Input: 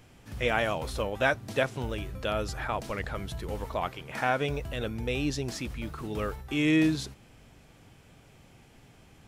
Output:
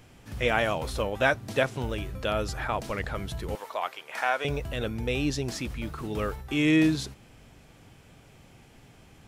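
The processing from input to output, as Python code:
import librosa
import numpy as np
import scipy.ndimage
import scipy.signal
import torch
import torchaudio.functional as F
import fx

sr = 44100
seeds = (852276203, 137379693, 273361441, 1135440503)

y = fx.highpass(x, sr, hz=620.0, slope=12, at=(3.55, 4.45))
y = F.gain(torch.from_numpy(y), 2.0).numpy()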